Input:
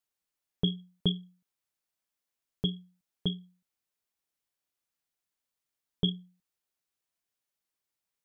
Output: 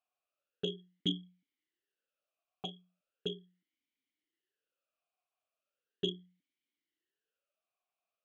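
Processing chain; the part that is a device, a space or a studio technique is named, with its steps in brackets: talk box (valve stage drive 25 dB, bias 0.3; talking filter a-i 0.38 Hz); trim +13.5 dB

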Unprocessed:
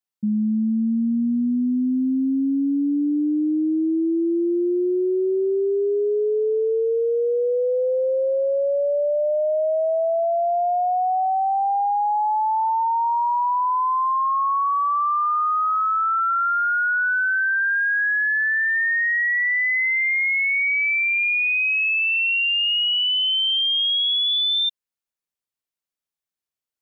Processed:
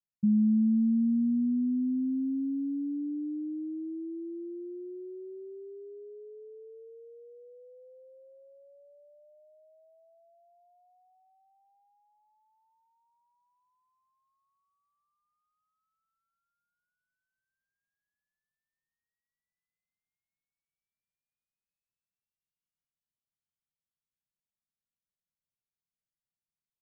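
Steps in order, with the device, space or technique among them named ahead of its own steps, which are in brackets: the neighbour's flat through the wall (low-pass 200 Hz 24 dB/octave; peaking EQ 170 Hz +3.5 dB)

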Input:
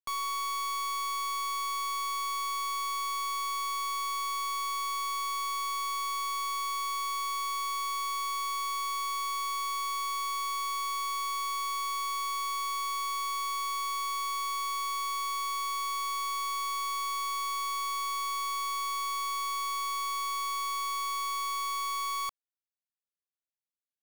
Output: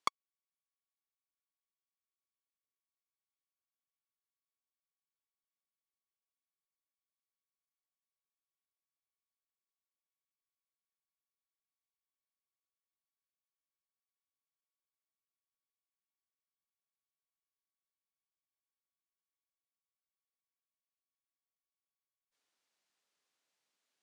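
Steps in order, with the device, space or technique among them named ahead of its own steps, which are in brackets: public-address speaker with an overloaded transformer (transformer saturation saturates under 390 Hz; band-pass 240–7000 Hz); trim +14 dB

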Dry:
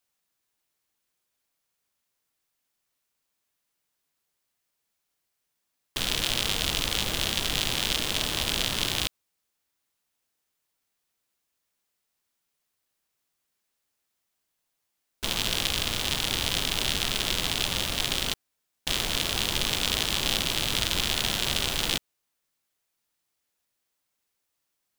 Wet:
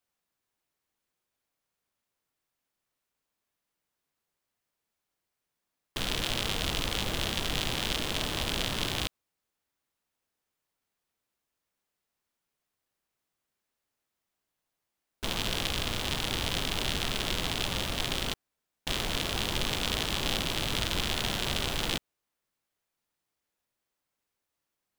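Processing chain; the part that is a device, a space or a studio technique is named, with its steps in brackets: behind a face mask (treble shelf 2.4 kHz -7.5 dB)

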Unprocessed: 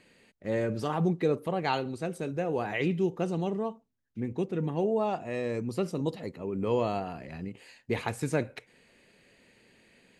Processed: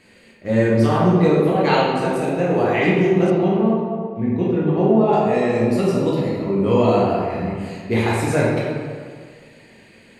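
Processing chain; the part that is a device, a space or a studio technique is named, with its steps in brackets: stairwell (reverberation RT60 1.9 s, pre-delay 9 ms, DRR -6.5 dB); 3.30–5.13 s: distance through air 170 m; trim +5.5 dB

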